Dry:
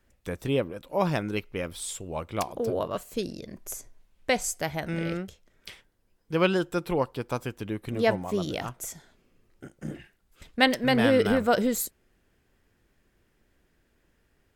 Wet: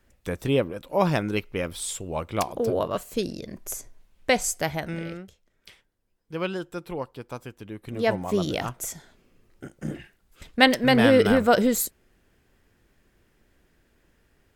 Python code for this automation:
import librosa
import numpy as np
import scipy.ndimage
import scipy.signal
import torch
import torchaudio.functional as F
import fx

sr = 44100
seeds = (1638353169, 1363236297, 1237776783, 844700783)

y = fx.gain(x, sr, db=fx.line((4.71, 3.5), (5.16, -6.0), (7.7, -6.0), (8.32, 4.0)))